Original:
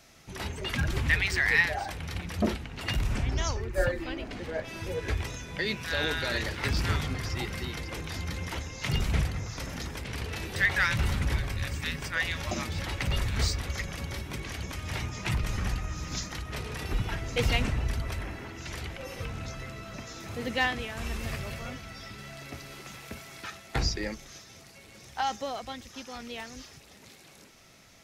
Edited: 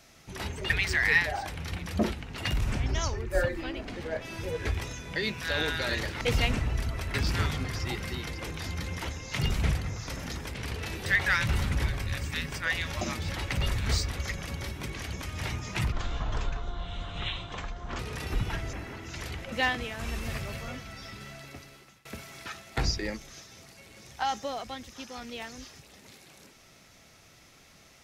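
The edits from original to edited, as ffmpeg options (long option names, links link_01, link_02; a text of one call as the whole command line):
ffmpeg -i in.wav -filter_complex "[0:a]asplit=9[link_01][link_02][link_03][link_04][link_05][link_06][link_07][link_08][link_09];[link_01]atrim=end=0.702[link_10];[link_02]atrim=start=1.128:end=6.642[link_11];[link_03]atrim=start=17.318:end=18.252[link_12];[link_04]atrim=start=6.638:end=15.424[link_13];[link_05]atrim=start=15.42:end=16.58,asetpts=PTS-STARTPTS,asetrate=24696,aresample=44100[link_14];[link_06]atrim=start=16.576:end=17.322[link_15];[link_07]atrim=start=18.248:end=19.042[link_16];[link_08]atrim=start=20.498:end=23.03,asetpts=PTS-STARTPTS,afade=type=out:start_time=1.722:duration=0.81:silence=0.0668344[link_17];[link_09]atrim=start=23.03,asetpts=PTS-STARTPTS,afade=type=in:duration=0.004:curve=hsin:silence=0.0668344[link_18];[link_10][link_11]acrossfade=duration=0.004:curve1=hsin:curve2=hsin[link_19];[link_19][link_12]acrossfade=duration=0.004:curve1=hsin:curve2=hsin[link_20];[link_20][link_13]acrossfade=duration=0.004:curve1=hsin:curve2=hsin[link_21];[link_21][link_14]acrossfade=duration=0.004:curve1=hsin:curve2=hsin[link_22];[link_22][link_15]acrossfade=duration=0.004:curve1=hsin:curve2=hsin[link_23];[link_23][link_16]acrossfade=duration=0.004:curve1=hsin:curve2=hsin[link_24];[link_17][link_18]concat=n=2:v=0:a=1[link_25];[link_24][link_25]acrossfade=duration=0.004:curve1=hsin:curve2=hsin" out.wav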